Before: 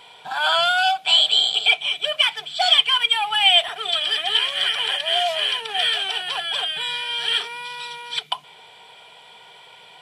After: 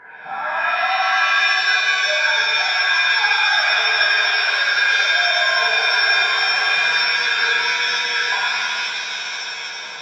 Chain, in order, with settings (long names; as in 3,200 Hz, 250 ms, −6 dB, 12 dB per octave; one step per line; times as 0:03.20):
hearing-aid frequency compression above 1,300 Hz 4 to 1
reversed playback
downward compressor 10 to 1, threshold −24 dBFS, peak gain reduction 18 dB
reversed playback
high-pass filter 120 Hz
reverb with rising layers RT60 3.4 s, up +7 semitones, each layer −2 dB, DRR −7.5 dB